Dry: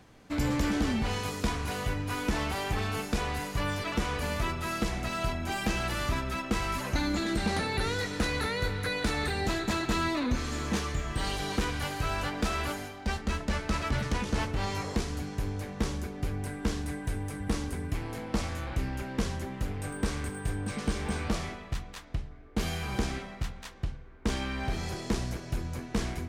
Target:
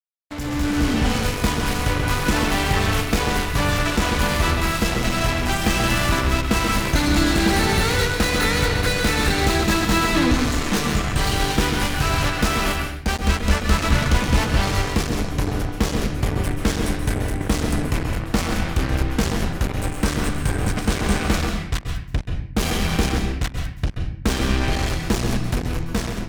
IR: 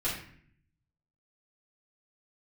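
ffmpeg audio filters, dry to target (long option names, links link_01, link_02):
-filter_complex "[0:a]acrusher=bits=4:mix=0:aa=0.5,asplit=2[link_01][link_02];[1:a]atrim=start_sample=2205,adelay=127[link_03];[link_02][link_03]afir=irnorm=-1:irlink=0,volume=-10dB[link_04];[link_01][link_04]amix=inputs=2:normalize=0,dynaudnorm=framelen=350:gausssize=5:maxgain=10.5dB,volume=-1.5dB"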